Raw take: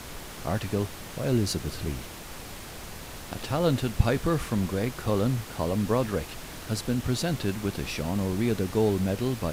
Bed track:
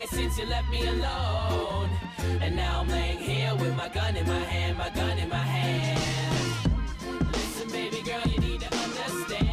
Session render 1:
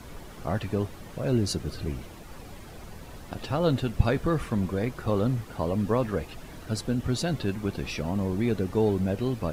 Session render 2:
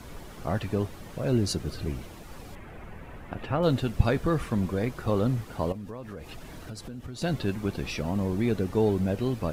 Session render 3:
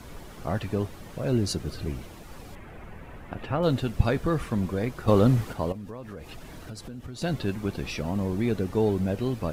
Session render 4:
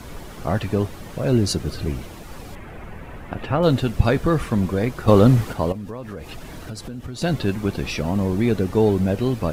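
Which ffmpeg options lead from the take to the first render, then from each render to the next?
-af "afftdn=nr=10:nf=-41"
-filter_complex "[0:a]asettb=1/sr,asplit=3[a][b][c];[a]atrim=end=2.554[d];[b]atrim=start=2.55:end=3.63,asetpts=PTS-STARTPTS,afade=t=in:d=0.004:c=qsin,afade=t=out:st=1.076:d=0.004:c=qsin,highshelf=f=3.2k:t=q:w=1.5:g=-11.5[e];[c]atrim=start=3.626[f];[d][e]acrossfade=d=0.004:c1=hsin:c2=qsin[g];[g][f]acrossfade=d=0.004:c1=qsin:c2=hsin,asettb=1/sr,asplit=3[h][i][j];[h]atrim=end=5.724[k];[i]atrim=start=5.72:end=7.22,asetpts=PTS-STARTPTS,afade=t=in:d=0.004:c=qsin,afade=t=out:st=1.496:d=0.004:c=qsin,acompressor=threshold=-36dB:ratio=6:attack=3.2:release=140:knee=1:detection=peak[l];[j]atrim=start=7.216[m];[k][l]acrossfade=d=0.004:c1=hsin:c2=qsin[n];[n][m]acrossfade=d=0.004:c1=qsin:c2=hsin"
-filter_complex "[0:a]asplit=3[a][b][c];[a]atrim=end=5.082[d];[b]atrim=start=5.078:end=5.532,asetpts=PTS-STARTPTS,volume=6dB[e];[c]atrim=start=5.528[f];[d][e]acrossfade=d=0.004:c1=hsin:c2=hsin[g];[g][f]acrossfade=d=0.004:c1=hsin:c2=hsin"
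-af "volume=6.5dB,alimiter=limit=-2dB:level=0:latency=1"

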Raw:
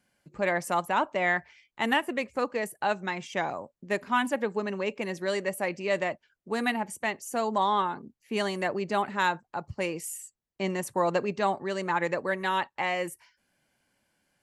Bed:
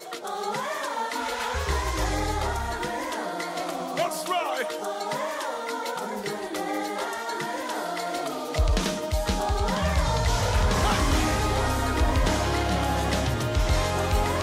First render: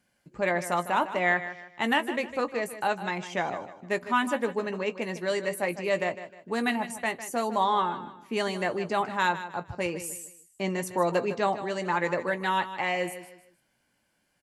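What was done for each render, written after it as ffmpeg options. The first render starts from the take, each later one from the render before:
-filter_complex "[0:a]asplit=2[a][b];[b]adelay=17,volume=-11dB[c];[a][c]amix=inputs=2:normalize=0,aecho=1:1:154|308|462:0.237|0.0783|0.0258"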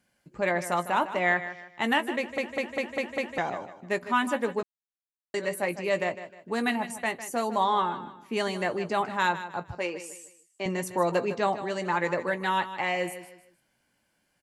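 -filter_complex "[0:a]asettb=1/sr,asplit=3[a][b][c];[a]atrim=end=9.784[d];[b]atrim=start=9.78:end=10.66,asetpts=PTS-STARTPTS,afade=t=in:d=0.004:c=qsin,afade=t=out:st=0.876:d=0.004:c=qsin,highpass=330,lowpass=6.7k[e];[c]atrim=start=10.656[f];[d][e]acrossfade=d=0.004:c1=hsin:c2=qsin[g];[g][f]acrossfade=d=0.004:c1=qsin:c2=hsin,asplit=9[h][i][j][k][l][m][n][o][p];[h]atrim=end=2.382[q];[i]atrim=start=2.178:end=2.382[r];[j]atrim=start=2.178:end=2.382[s];[k]atrim=start=2.178:end=2.382[t];[l]atrim=start=2.178:end=2.382[u];[m]atrim=start=2.178:end=2.382[v];[n]atrim=start=3.378:end=4.63,asetpts=PTS-STARTPTS,afade=t=out:st=1.248:d=0.004:c=hsin[w];[o]atrim=start=4.63:end=5.34,asetpts=PTS-STARTPTS,volume=0[x];[p]atrim=start=5.34,asetpts=PTS-STARTPTS,afade=t=in:d=0.004:c=hsin[y];[q][r]acrossfade=d=0.004:c1=hsin:c2=hsin[z];[z][s]acrossfade=d=0.004:c1=hsin:c2=hsin[aa];[aa][t]acrossfade=d=0.004:c1=hsin:c2=hsin[ab];[ab][u]acrossfade=d=0.004:c1=hsin:c2=hsin[ac];[ac][v]acrossfade=d=0.004:c1=hsin:c2=hsin[ad];[w][x][y]concat=n=3:v=0:a=1[ae];[ad][ae]acrossfade=d=0.004:c1=hsin:c2=hsin"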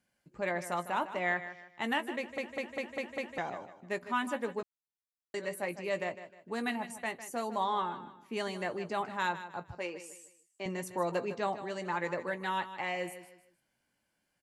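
-af "volume=-7dB"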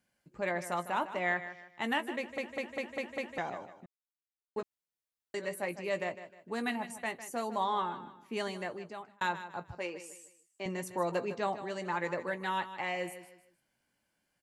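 -filter_complex "[0:a]asplit=4[a][b][c][d];[a]atrim=end=3.86,asetpts=PTS-STARTPTS,afade=t=out:st=3.856:d=0.004:c=hsin[e];[b]atrim=start=3.86:end=4.56,asetpts=PTS-STARTPTS,volume=0[f];[c]atrim=start=4.56:end=9.21,asetpts=PTS-STARTPTS,afade=t=in:d=0.004:c=hsin,afade=t=out:st=3.88:d=0.77[g];[d]atrim=start=9.21,asetpts=PTS-STARTPTS,afade=t=in:d=0.004:c=hsin[h];[e][f][g][h]concat=n=4:v=0:a=1"

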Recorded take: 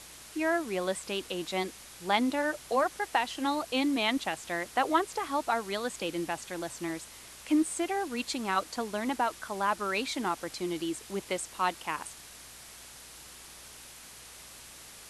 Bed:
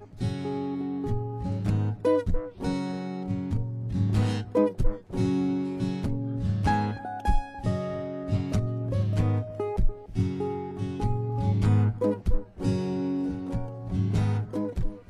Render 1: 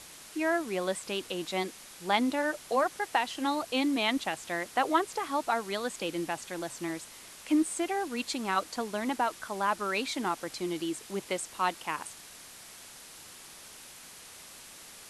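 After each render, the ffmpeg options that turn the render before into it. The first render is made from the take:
-af "bandreject=f=60:t=h:w=4,bandreject=f=120:t=h:w=4"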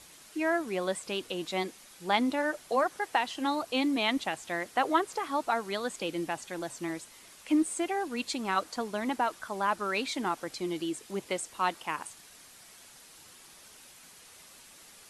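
-af "afftdn=nr=6:nf=-50"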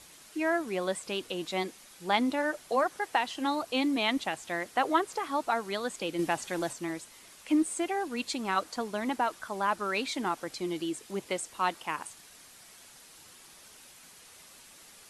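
-filter_complex "[0:a]asplit=3[a][b][c];[a]atrim=end=6.192[d];[b]atrim=start=6.188:end=6.732,asetpts=PTS-STARTPTS,volume=4.5dB[e];[c]atrim=start=6.728[f];[d][e]acrossfade=d=0.004:c1=hsin:c2=hsin[g];[g][f]acrossfade=d=0.004:c1=hsin:c2=hsin"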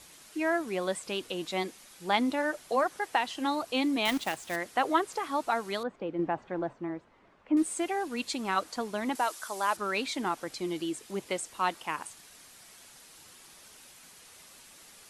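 -filter_complex "[0:a]asettb=1/sr,asplit=3[a][b][c];[a]atrim=end=4.054[d];[b]atrim=start=4.05:end=4.56,asetpts=PTS-STARTPTS,afade=t=in:d=0.004:c=qsin,afade=t=out:st=0.506:d=0.004:c=qsin,acrusher=bits=2:mode=log:mix=0:aa=0.000001[e];[c]atrim=start=4.556[f];[d][e]acrossfade=d=0.004:c1=hsin:c2=qsin[g];[g][f]acrossfade=d=0.004:c1=qsin:c2=hsin,asettb=1/sr,asplit=3[h][i][j];[h]atrim=end=5.834[k];[i]atrim=start=5.83:end=7.57,asetpts=PTS-STARTPTS,afade=t=in:d=0.004:c=qsin,afade=t=out:st=1.736:d=0.004:c=qsin,lowpass=1.2k[l];[j]atrim=start=7.566[m];[k][l]acrossfade=d=0.004:c1=hsin:c2=qsin[n];[n][m]acrossfade=d=0.004:c1=qsin:c2=hsin,asettb=1/sr,asplit=3[o][p][q];[o]atrim=end=9.154[r];[p]atrim=start=9.15:end=9.77,asetpts=PTS-STARTPTS,afade=t=in:d=0.004:c=qsin,afade=t=out:st=0.616:d=0.004:c=qsin,bass=f=250:g=-14,treble=f=4k:g=10[s];[q]atrim=start=9.766[t];[r][s]acrossfade=d=0.004:c1=hsin:c2=qsin[u];[u][t]acrossfade=d=0.004:c1=qsin:c2=hsin"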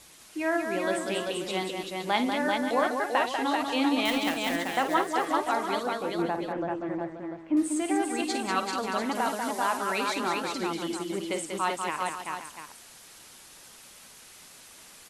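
-af "aecho=1:1:53|192|388|532|693:0.335|0.531|0.668|0.251|0.299"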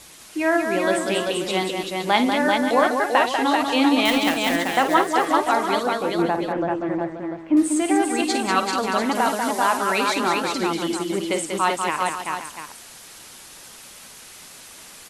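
-af "volume=7.5dB"

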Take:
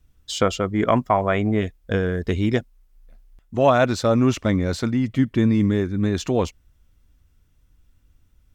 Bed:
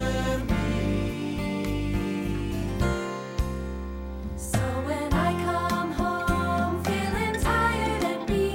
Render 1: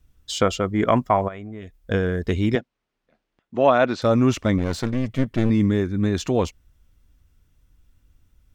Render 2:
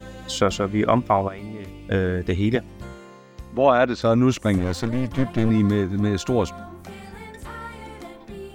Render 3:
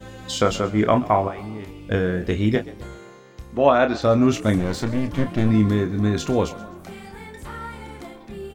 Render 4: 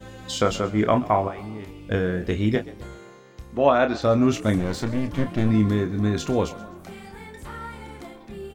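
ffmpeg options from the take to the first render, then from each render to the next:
-filter_complex "[0:a]asplit=3[a][b][c];[a]afade=t=out:st=1.27:d=0.02[d];[b]acompressor=threshold=-37dB:ratio=3:attack=3.2:release=140:knee=1:detection=peak,afade=t=in:st=1.27:d=0.02,afade=t=out:st=1.76:d=0.02[e];[c]afade=t=in:st=1.76:d=0.02[f];[d][e][f]amix=inputs=3:normalize=0,asettb=1/sr,asplit=3[g][h][i];[g]atrim=end=2.554[j];[h]atrim=start=2.55:end=4.02,asetpts=PTS-STARTPTS,afade=t=in:d=0.004:c=qsin,afade=t=out:st=1.466:d=0.004:c=qsin,highpass=200,lowpass=3.8k[k];[i]atrim=start=4.016[l];[j][k]acrossfade=d=0.004:c1=hsin:c2=qsin[m];[m][l]acrossfade=d=0.004:c1=qsin:c2=hsin,asettb=1/sr,asplit=3[n][o][p];[n]atrim=end=4.584[q];[o]atrim=start=4.58:end=5.5,asetpts=PTS-STARTPTS,afade=t=in:d=0.004:c=qsin,afade=t=out:st=0.916:d=0.004:c=qsin,aeval=exprs='clip(val(0),-1,0.0299)':c=same[r];[p]atrim=start=5.496[s];[q][r]acrossfade=d=0.004:c1=hsin:c2=qsin[t];[t][s]acrossfade=d=0.004:c1=qsin:c2=hsin"
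-filter_complex "[1:a]volume=-12.5dB[a];[0:a][a]amix=inputs=2:normalize=0"
-filter_complex "[0:a]asplit=2[a][b];[b]adelay=28,volume=-8dB[c];[a][c]amix=inputs=2:normalize=0,asplit=5[d][e][f][g][h];[e]adelay=129,afreqshift=47,volume=-19dB[i];[f]adelay=258,afreqshift=94,volume=-25.9dB[j];[g]adelay=387,afreqshift=141,volume=-32.9dB[k];[h]adelay=516,afreqshift=188,volume=-39.8dB[l];[d][i][j][k][l]amix=inputs=5:normalize=0"
-af "volume=-2dB"

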